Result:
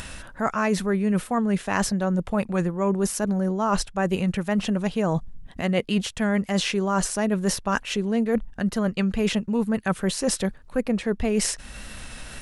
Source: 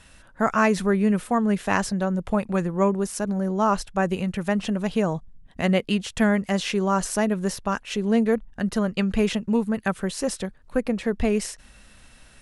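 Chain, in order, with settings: reverse; compression 6:1, threshold -29 dBFS, peak gain reduction 13.5 dB; reverse; wow and flutter 24 cents; upward compressor, threshold -39 dBFS; trim +8.5 dB

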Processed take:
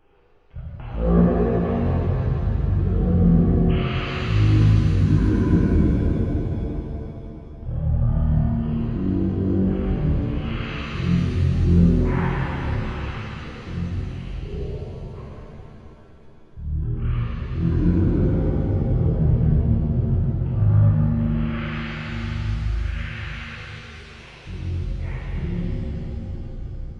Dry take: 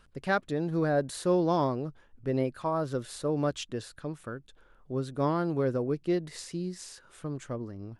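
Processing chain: wide varispeed 0.296×; pitch-shifted reverb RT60 3.5 s, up +7 st, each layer -8 dB, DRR -8.5 dB

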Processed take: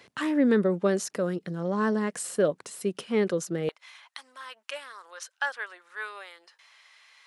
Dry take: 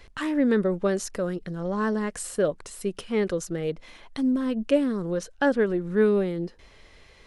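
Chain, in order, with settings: high-pass 130 Hz 24 dB/octave, from 3.69 s 950 Hz

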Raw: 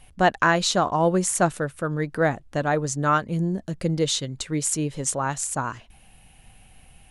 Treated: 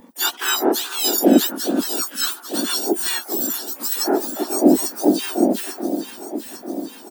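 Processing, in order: spectrum inverted on a logarithmic axis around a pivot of 1.6 kHz; treble shelf 8.1 kHz +3.5 dB; static phaser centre 580 Hz, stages 6; harmony voices -4 st -8 dB, +4 st -17 dB, +12 st -8 dB; echo whose repeats swap between lows and highs 424 ms, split 1.5 kHz, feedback 77%, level -8.5 dB; trim +4.5 dB

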